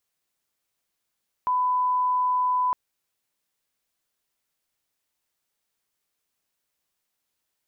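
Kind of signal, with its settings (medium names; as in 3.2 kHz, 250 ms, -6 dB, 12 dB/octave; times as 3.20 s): line-up tone -20 dBFS 1.26 s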